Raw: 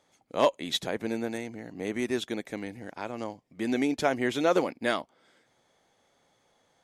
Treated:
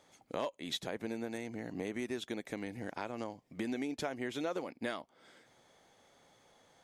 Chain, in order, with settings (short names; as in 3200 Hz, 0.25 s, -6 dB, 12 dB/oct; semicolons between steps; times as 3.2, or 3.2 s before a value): compressor 5:1, threshold -39 dBFS, peak gain reduction 19 dB; gain +3 dB